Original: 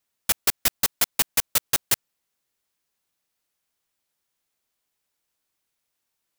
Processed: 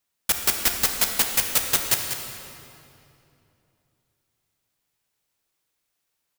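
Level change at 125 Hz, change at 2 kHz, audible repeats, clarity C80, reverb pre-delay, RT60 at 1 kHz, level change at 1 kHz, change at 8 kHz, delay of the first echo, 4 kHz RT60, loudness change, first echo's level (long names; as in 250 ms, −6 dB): +2.0 dB, +2.0 dB, 1, 4.0 dB, 26 ms, 2.6 s, +2.0 dB, +1.5 dB, 194 ms, 2.0 s, +1.0 dB, −9.0 dB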